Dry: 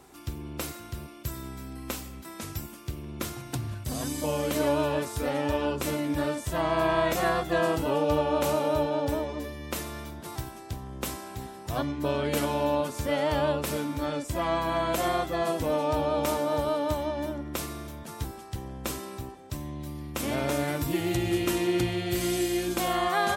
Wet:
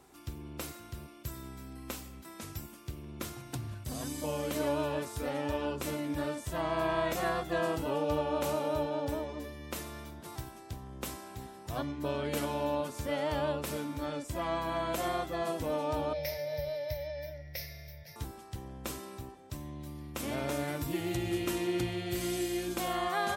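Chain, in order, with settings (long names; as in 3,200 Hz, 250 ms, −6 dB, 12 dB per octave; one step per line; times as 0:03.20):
0:16.13–0:18.16: drawn EQ curve 150 Hz 0 dB, 230 Hz −27 dB, 380 Hz −19 dB, 570 Hz +1 dB, 1,200 Hz −27 dB, 2,000 Hz +9 dB, 3,000 Hz −8 dB, 5,400 Hz +8 dB, 7,600 Hz −25 dB, 15,000 Hz +10 dB
level −6 dB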